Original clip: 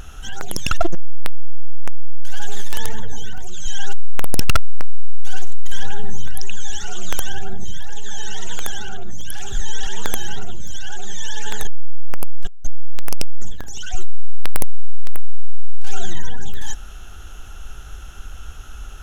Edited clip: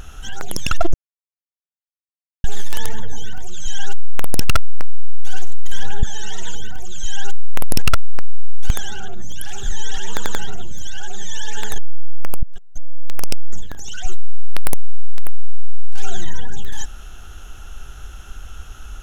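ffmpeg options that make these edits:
-filter_complex "[0:a]asplit=10[a][b][c][d][e][f][g][h][i][j];[a]atrim=end=0.94,asetpts=PTS-STARTPTS,afade=t=out:st=0.936:d=0.004:c=hsin[k];[b]atrim=start=0.94:end=2.44,asetpts=PTS-STARTPTS,volume=0[l];[c]atrim=start=2.44:end=6.032,asetpts=PTS-STARTPTS,afade=t=in:d=0.004:c=hsin[m];[d]atrim=start=8.068:end=8.592[n];[e]atrim=start=3.168:end=5.322[o];[f]atrim=start=8.588:end=10.092[p];[g]atrim=start=9.998:end=10.092[q];[h]atrim=start=9.998:end=10.092[r];[i]atrim=start=10.268:end=12.32,asetpts=PTS-STARTPTS,afade=t=out:st=2.048:d=0.004:c=hsin:silence=0.141254[s];[j]atrim=start=12.32,asetpts=PTS-STARTPTS,afade=t=in:d=0.77:silence=0.141254[t];[k][l][m]concat=n=3:v=0:a=1[u];[u][n]acrossfade=d=0.004:c1=hsin:c2=hsin[v];[v][o]acrossfade=d=0.004:c1=hsin:c2=hsin[w];[w][p]acrossfade=d=0.004:c1=hsin:c2=hsin[x];[x][q]acrossfade=d=0.004:c1=hsin:c2=hsin[y];[y][r]acrossfade=d=0.004:c1=hsin:c2=hsin[z];[s][t]concat=n=2:v=0:a=1[aa];[z][aa]acrossfade=d=0.004:c1=hsin:c2=hsin"

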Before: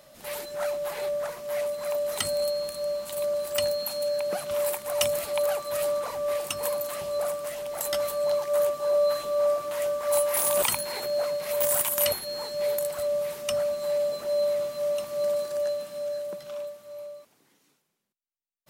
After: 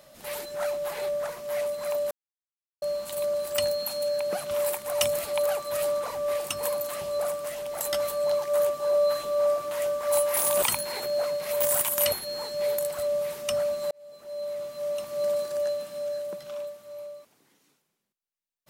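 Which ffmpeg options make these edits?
-filter_complex "[0:a]asplit=4[a][b][c][d];[a]atrim=end=2.11,asetpts=PTS-STARTPTS,afade=t=out:st=2.106:d=0.004:c=hsin[e];[b]atrim=start=2.11:end=2.82,asetpts=PTS-STARTPTS,volume=0[f];[c]atrim=start=2.82:end=13.91,asetpts=PTS-STARTPTS,afade=t=in:d=0.004:c=hsin,afade=t=out:st=11.086:d=0.004:c=hsin[g];[d]atrim=start=13.91,asetpts=PTS-STARTPTS,afade=t=in:d=1.4[h];[e][f][g][h]concat=n=4:v=0:a=1"

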